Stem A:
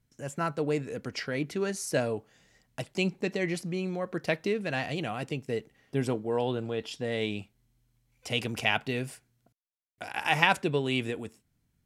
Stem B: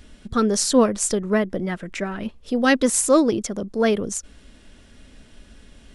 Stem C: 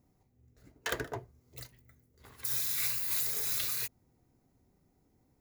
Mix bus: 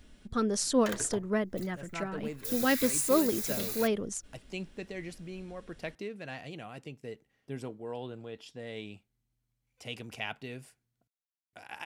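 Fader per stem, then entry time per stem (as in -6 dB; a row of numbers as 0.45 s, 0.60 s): -10.5 dB, -9.5 dB, -3.5 dB; 1.55 s, 0.00 s, 0.00 s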